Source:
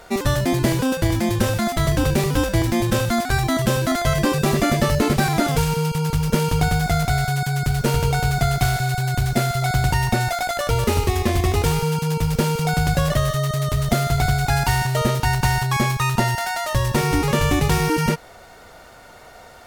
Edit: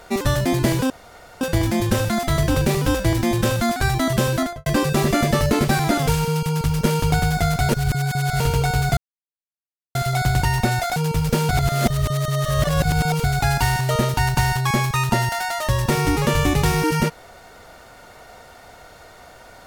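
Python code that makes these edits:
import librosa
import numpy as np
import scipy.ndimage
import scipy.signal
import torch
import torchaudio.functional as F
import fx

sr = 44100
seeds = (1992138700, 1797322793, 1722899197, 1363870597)

y = fx.studio_fade_out(x, sr, start_s=3.85, length_s=0.3)
y = fx.edit(y, sr, fx.insert_room_tone(at_s=0.9, length_s=0.51),
    fx.reverse_span(start_s=7.18, length_s=0.71),
    fx.silence(start_s=8.46, length_s=0.98),
    fx.cut(start_s=10.45, length_s=1.57),
    fx.reverse_span(start_s=12.55, length_s=1.75), tone=tone)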